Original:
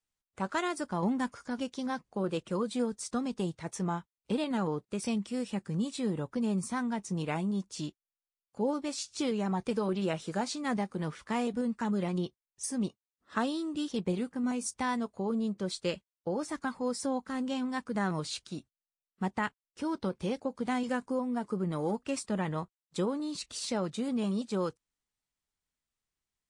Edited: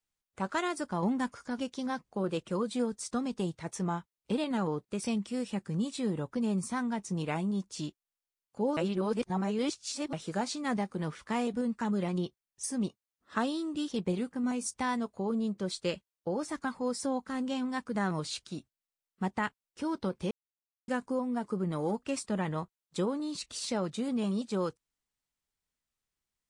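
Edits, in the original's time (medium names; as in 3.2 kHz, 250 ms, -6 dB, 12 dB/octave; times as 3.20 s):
8.77–10.13 s: reverse
20.31–20.88 s: mute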